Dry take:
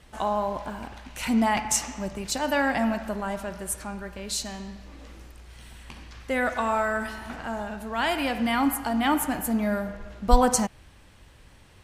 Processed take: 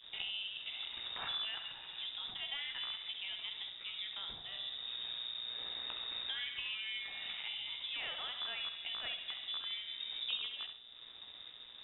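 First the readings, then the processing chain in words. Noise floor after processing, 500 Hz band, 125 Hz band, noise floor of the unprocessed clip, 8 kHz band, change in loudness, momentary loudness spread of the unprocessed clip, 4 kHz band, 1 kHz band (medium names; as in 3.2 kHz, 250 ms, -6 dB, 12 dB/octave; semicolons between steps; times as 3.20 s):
-54 dBFS, -31.0 dB, under -25 dB, -53 dBFS, under -40 dB, -13.0 dB, 16 LU, +1.5 dB, -26.0 dB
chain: rattle on loud lows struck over -26 dBFS, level -18 dBFS; hum notches 50/100/150/200 Hz; compression 5:1, threshold -41 dBFS, peak gain reduction 26 dB; added noise blue -56 dBFS; expander -48 dBFS; mains buzz 120 Hz, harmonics 6, -55 dBFS -6 dB/octave; on a send: flutter echo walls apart 11.6 m, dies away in 0.48 s; on the sum: crossover distortion -59 dBFS; frequency inversion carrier 3.7 kHz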